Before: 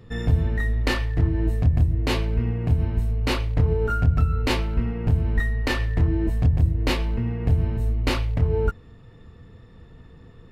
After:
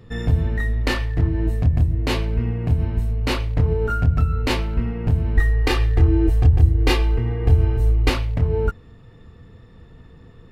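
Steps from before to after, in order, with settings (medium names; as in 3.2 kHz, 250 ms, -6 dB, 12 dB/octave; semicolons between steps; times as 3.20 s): 5.37–8.10 s: comb 2.5 ms, depth 97%; trim +1.5 dB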